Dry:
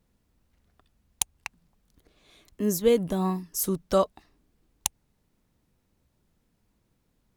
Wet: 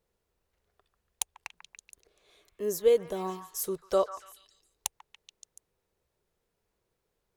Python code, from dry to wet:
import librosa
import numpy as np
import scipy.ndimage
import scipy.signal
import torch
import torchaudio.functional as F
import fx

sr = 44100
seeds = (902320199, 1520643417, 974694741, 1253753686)

y = fx.low_shelf_res(x, sr, hz=330.0, db=-6.5, q=3.0)
y = fx.echo_stepped(y, sr, ms=143, hz=1300.0, octaves=0.7, feedback_pct=70, wet_db=-7)
y = F.gain(torch.from_numpy(y), -5.5).numpy()